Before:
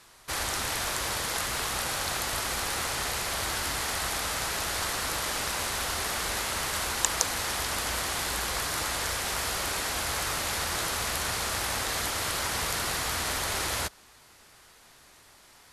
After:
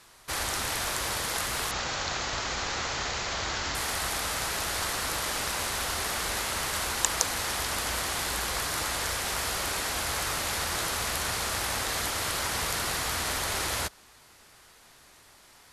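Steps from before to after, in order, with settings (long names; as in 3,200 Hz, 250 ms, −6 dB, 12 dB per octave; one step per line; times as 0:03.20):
0:01.71–0:03.75: Butterworth low-pass 7,300 Hz 96 dB per octave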